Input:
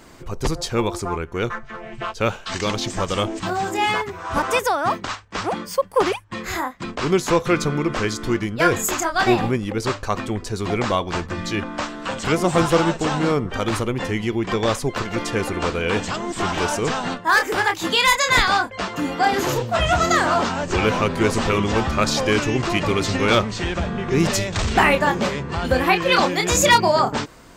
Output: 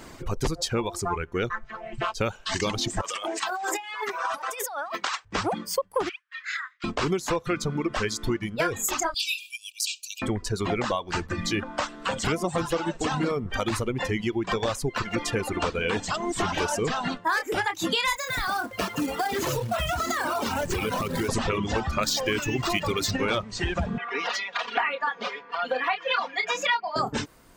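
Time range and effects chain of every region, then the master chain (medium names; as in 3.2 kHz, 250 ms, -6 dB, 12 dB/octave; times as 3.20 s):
3.01–5.25 s: high-pass 640 Hz + compressor with a negative ratio -31 dBFS
6.09–6.84 s: steep high-pass 1.3 kHz 48 dB/octave + distance through air 160 m
9.14–10.22 s: brick-wall FIR high-pass 2.3 kHz + treble shelf 6.7 kHz +12 dB
18.16–21.29 s: de-hum 176 Hz, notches 12 + compression 8:1, threshold -21 dBFS + companded quantiser 4-bit
22.03–23.11 s: treble shelf 3.1 kHz +9 dB + decimation joined by straight lines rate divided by 2×
23.98–26.96 s: high-pass 810 Hz + distance through air 260 m + comb 4.2 ms, depth 96%
whole clip: reverb removal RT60 2 s; compression 6:1, threshold -25 dBFS; trim +2 dB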